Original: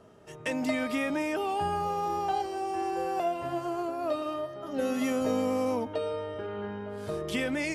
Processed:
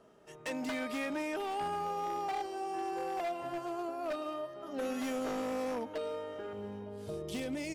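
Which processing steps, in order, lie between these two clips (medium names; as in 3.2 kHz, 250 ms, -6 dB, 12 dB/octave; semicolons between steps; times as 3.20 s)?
wavefolder -24.5 dBFS; peaking EQ 91 Hz -11 dB 1.3 oct, from 6.53 s 1.5 kHz; delay 1056 ms -22 dB; trim -5 dB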